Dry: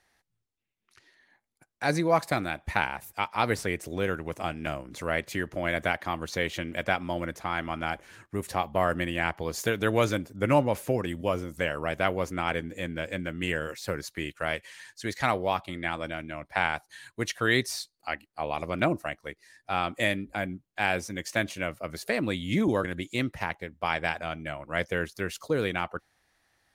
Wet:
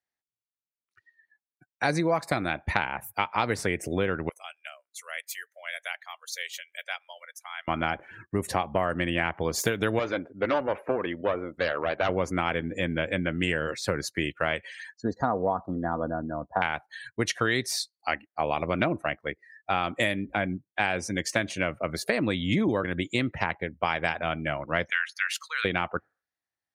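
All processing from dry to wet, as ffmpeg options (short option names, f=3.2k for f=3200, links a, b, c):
-filter_complex "[0:a]asettb=1/sr,asplit=3[a][b][c];[a]atrim=end=4.294[d];[b]atrim=start=4.29:end=7.68,asetpts=PTS-STARTPTS,afade=t=in:d=0.004:c=qsin,afade=t=out:st=3.386:d=0.004:c=qsin,highpass=f=450:w=0.5412,highpass=f=450:w=1.3066,aderivative[e];[c]atrim=start=7.676[f];[d][e]acrossfade=d=0.004:c1=hsin:c2=qsin[g];[g][f]acrossfade=d=0.004:c1=qsin:c2=hsin,asettb=1/sr,asplit=3[h][i][j];[h]atrim=end=9.994[k];[i]atrim=start=9.99:end=12.09,asetpts=PTS-STARTPTS,afade=t=in:d=0.004:c=qsin,afade=t=out:st=2.096:d=0.004:c=qsin,bass=f=250:g=-14,treble=f=4k:g=-15,aeval=exprs='clip(val(0),-1,0.0355)':c=same[l];[j]atrim=start=12.086[m];[k][l]acrossfade=d=0.004:c1=hsin:c2=qsin[n];[n][m]acrossfade=d=0.004:c1=qsin:c2=hsin,asettb=1/sr,asplit=3[o][p][q];[o]atrim=end=14.944[r];[p]atrim=start=14.94:end=16.62,asetpts=PTS-STARTPTS,afade=t=in:d=0.004:c=qsin,afade=t=out:st=1.676:d=0.004:c=qsin,asuperstop=centerf=2500:order=4:qfactor=0.68,aemphasis=mode=reproduction:type=75kf,aecho=1:1:4.2:0.38,atrim=end_sample=74088[s];[q]atrim=start=16.616[t];[r][s]acrossfade=d=0.004:c1=hsin:c2=qsin[u];[u][t]acrossfade=d=0.004:c1=qsin:c2=hsin,asettb=1/sr,asplit=3[v][w][x];[v]atrim=end=24.904[y];[w]atrim=start=24.9:end=25.65,asetpts=PTS-STARTPTS,afade=t=in:d=0.004:c=qsin,afade=t=out:st=0.746:d=0.004:c=qsin,highpass=f=1.3k:w=0.5412,highpass=f=1.3k:w=1.3066,equalizer=f=2k:t=o:w=1.5:g=5[z];[x]atrim=start=25.646[aa];[y][z]acrossfade=d=0.004:c1=hsin:c2=qsin[ab];[ab][aa]acrossfade=d=0.004:c1=qsin:c2=hsin,highpass=69,afftdn=nr=30:nf=-50,acompressor=threshold=-28dB:ratio=6,volume=6.5dB"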